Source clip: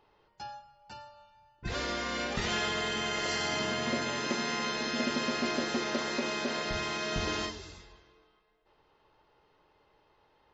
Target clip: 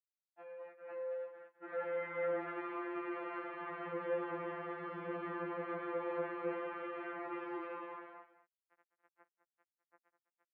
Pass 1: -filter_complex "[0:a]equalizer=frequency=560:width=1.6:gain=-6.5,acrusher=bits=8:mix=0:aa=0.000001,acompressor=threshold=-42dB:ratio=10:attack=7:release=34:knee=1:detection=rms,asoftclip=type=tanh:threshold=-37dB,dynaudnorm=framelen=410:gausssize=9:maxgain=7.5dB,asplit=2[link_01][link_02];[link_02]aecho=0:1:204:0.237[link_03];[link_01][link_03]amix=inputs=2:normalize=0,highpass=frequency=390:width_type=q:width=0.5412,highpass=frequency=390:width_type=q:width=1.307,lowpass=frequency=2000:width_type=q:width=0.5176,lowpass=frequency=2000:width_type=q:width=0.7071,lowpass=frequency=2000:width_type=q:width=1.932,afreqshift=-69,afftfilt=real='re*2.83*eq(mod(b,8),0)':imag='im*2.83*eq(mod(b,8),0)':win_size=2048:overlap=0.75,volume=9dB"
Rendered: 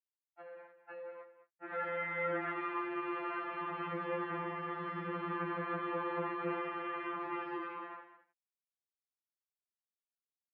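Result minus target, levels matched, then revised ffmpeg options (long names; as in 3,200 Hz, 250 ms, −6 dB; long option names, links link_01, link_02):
soft clipping: distortion −11 dB; 500 Hz band −4.5 dB
-filter_complex "[0:a]equalizer=frequency=560:width=1.6:gain=5,acrusher=bits=8:mix=0:aa=0.000001,acompressor=threshold=-42dB:ratio=10:attack=7:release=34:knee=1:detection=rms,asoftclip=type=tanh:threshold=-48.5dB,dynaudnorm=framelen=410:gausssize=9:maxgain=7.5dB,asplit=2[link_01][link_02];[link_02]aecho=0:1:204:0.237[link_03];[link_01][link_03]amix=inputs=2:normalize=0,highpass=frequency=390:width_type=q:width=0.5412,highpass=frequency=390:width_type=q:width=1.307,lowpass=frequency=2000:width_type=q:width=0.5176,lowpass=frequency=2000:width_type=q:width=0.7071,lowpass=frequency=2000:width_type=q:width=1.932,afreqshift=-69,afftfilt=real='re*2.83*eq(mod(b,8),0)':imag='im*2.83*eq(mod(b,8),0)':win_size=2048:overlap=0.75,volume=9dB"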